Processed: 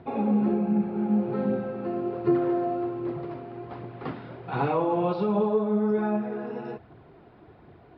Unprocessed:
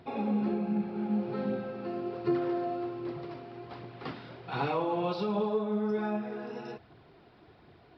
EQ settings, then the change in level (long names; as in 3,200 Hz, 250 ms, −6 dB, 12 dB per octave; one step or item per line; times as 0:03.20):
high-frequency loss of the air 170 metres
high-shelf EQ 2,600 Hz −10.5 dB
+6.5 dB